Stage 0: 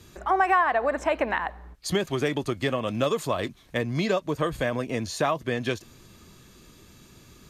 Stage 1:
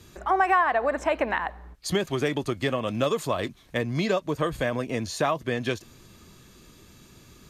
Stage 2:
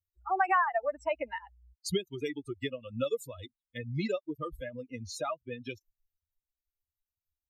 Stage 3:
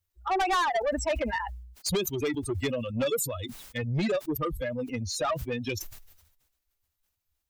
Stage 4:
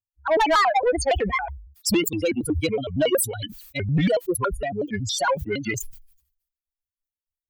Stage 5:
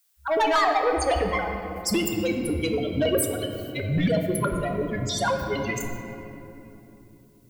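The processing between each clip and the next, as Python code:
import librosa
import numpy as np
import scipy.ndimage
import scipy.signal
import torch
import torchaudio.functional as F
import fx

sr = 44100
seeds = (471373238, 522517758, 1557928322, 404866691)

y1 = x
y2 = fx.bin_expand(y1, sr, power=3.0)
y2 = y2 * librosa.db_to_amplitude(-1.5)
y3 = 10.0 ** (-32.0 / 20.0) * np.tanh(y2 / 10.0 ** (-32.0 / 20.0))
y3 = fx.sustainer(y3, sr, db_per_s=60.0)
y3 = y3 * librosa.db_to_amplitude(9.0)
y4 = fx.bin_expand(y3, sr, power=1.5)
y4 = fx.vibrato_shape(y4, sr, shape='square', rate_hz=5.4, depth_cents=250.0)
y4 = y4 * librosa.db_to_amplitude(8.5)
y5 = fx.dmg_noise_colour(y4, sr, seeds[0], colour='blue', level_db=-64.0)
y5 = fx.room_shoebox(y5, sr, seeds[1], volume_m3=160.0, walls='hard', distance_m=0.31)
y5 = y5 * librosa.db_to_amplitude(-3.5)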